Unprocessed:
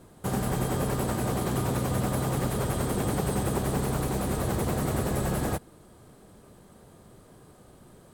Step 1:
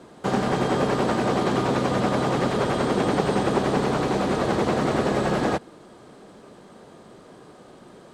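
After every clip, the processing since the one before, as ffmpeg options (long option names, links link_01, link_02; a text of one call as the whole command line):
ffmpeg -i in.wav -filter_complex "[0:a]acrossover=split=6800[link_01][link_02];[link_02]acompressor=threshold=-48dB:ratio=4:attack=1:release=60[link_03];[link_01][link_03]amix=inputs=2:normalize=0,acrossover=split=180 7000:gain=0.158 1 0.0708[link_04][link_05][link_06];[link_04][link_05][link_06]amix=inputs=3:normalize=0,volume=8.5dB" out.wav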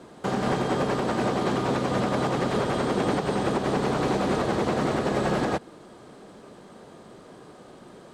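ffmpeg -i in.wav -af "alimiter=limit=-15dB:level=0:latency=1:release=151" out.wav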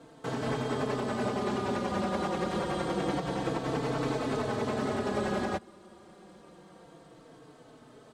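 ffmpeg -i in.wav -filter_complex "[0:a]asplit=2[link_01][link_02];[link_02]adelay=4,afreqshift=-0.27[link_03];[link_01][link_03]amix=inputs=2:normalize=1,volume=-3dB" out.wav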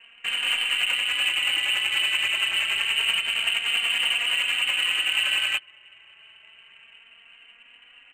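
ffmpeg -i in.wav -af "lowpass=frequency=2700:width_type=q:width=0.5098,lowpass=frequency=2700:width_type=q:width=0.6013,lowpass=frequency=2700:width_type=q:width=0.9,lowpass=frequency=2700:width_type=q:width=2.563,afreqshift=-3200,adynamicsmooth=sensitivity=8:basefreq=2400,volume=7dB" out.wav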